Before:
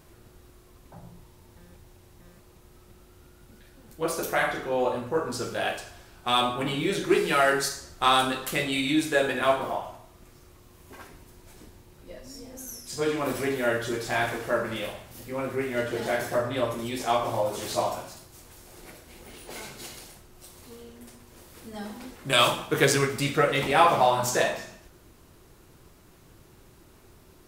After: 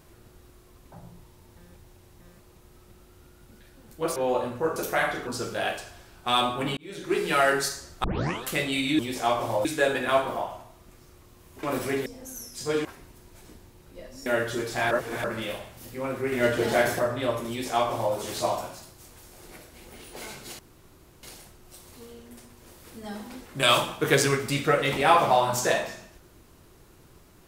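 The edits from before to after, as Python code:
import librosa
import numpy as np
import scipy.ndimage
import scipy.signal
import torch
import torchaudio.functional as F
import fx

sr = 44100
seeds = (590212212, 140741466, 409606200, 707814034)

y = fx.edit(x, sr, fx.move(start_s=4.16, length_s=0.51, to_s=5.27),
    fx.fade_in_span(start_s=6.77, length_s=0.59),
    fx.tape_start(start_s=8.04, length_s=0.4),
    fx.swap(start_s=10.97, length_s=1.41, other_s=13.17, other_length_s=0.43),
    fx.reverse_span(start_s=14.25, length_s=0.33),
    fx.clip_gain(start_s=15.66, length_s=0.67, db=5.0),
    fx.duplicate(start_s=16.83, length_s=0.66, to_s=8.99),
    fx.insert_room_tone(at_s=19.93, length_s=0.64), tone=tone)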